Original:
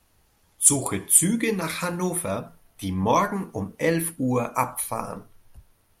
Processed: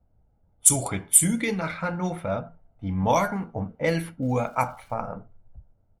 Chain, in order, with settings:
low-pass that shuts in the quiet parts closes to 490 Hz, open at −16.5 dBFS
0:04.21–0:04.93: surface crackle 600 per second −49 dBFS
comb filter 1.4 ms, depth 49%
level −1 dB

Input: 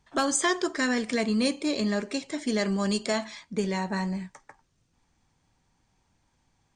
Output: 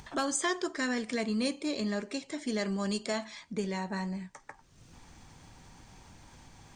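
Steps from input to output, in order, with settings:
upward compression, threshold −29 dBFS
level −5.5 dB

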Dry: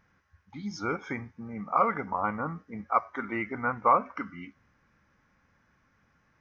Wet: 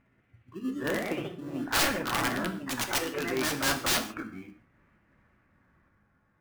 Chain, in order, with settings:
pitch glide at a constant tempo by +4.5 semitones ending unshifted
low-pass filter 1,800 Hz 12 dB per octave
in parallel at −11 dB: decimation without filtering 30×
on the sum: wrap-around overflow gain 21.5 dB
delay with pitch and tempo change per echo 183 ms, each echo +2 semitones, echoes 2
reverb whose tail is shaped and stops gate 180 ms falling, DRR 7 dB

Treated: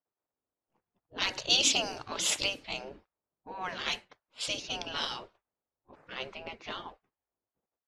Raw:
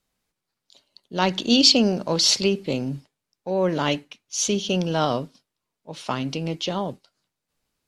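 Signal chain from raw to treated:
gate on every frequency bin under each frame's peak −15 dB weak
low-pass that shuts in the quiet parts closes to 770 Hz, open at −28.5 dBFS

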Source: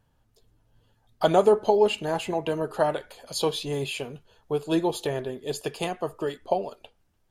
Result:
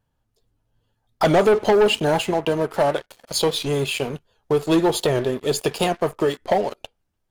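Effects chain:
leveller curve on the samples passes 3
in parallel at −1.5 dB: downward compressor, threshold −20 dBFS, peak gain reduction 9.5 dB
0:02.22–0:04.02: on the sum: power curve on the samples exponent 1.4
wow of a warped record 78 rpm, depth 100 cents
level −5 dB

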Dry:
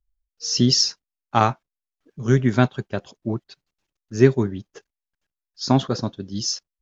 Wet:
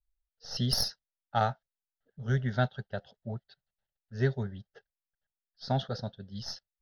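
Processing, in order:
stylus tracing distortion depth 0.038 ms
phaser with its sweep stopped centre 1,600 Hz, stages 8
low-pass that shuts in the quiet parts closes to 2,800 Hz, open at −17 dBFS
level −7 dB

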